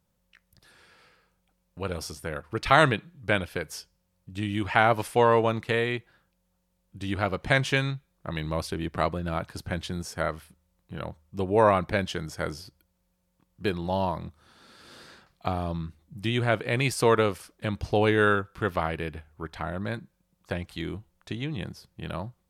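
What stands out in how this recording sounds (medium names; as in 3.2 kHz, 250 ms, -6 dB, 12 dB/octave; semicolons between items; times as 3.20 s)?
noise floor -74 dBFS; spectral tilt -4.5 dB/octave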